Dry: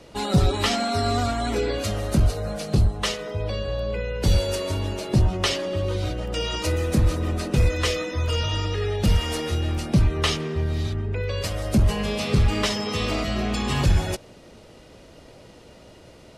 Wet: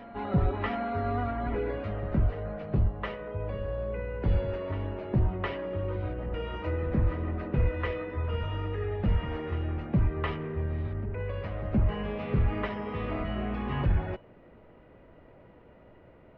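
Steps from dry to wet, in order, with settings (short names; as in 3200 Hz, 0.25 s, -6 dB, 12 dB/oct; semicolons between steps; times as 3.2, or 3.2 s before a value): LPF 2100 Hz 24 dB/oct; resonator 990 Hz, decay 0.31 s, mix 70%; on a send: reverse echo 0.714 s -15 dB; on the sum: gain +3.5 dB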